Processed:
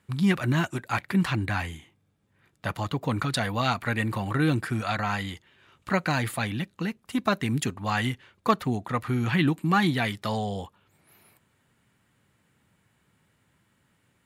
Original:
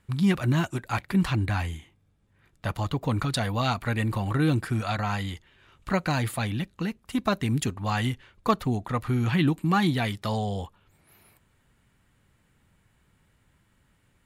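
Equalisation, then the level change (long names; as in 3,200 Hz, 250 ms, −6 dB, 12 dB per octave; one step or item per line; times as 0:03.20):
high-pass filter 110 Hz 12 dB per octave
dynamic equaliser 1,800 Hz, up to +4 dB, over −41 dBFS, Q 1.4
0.0 dB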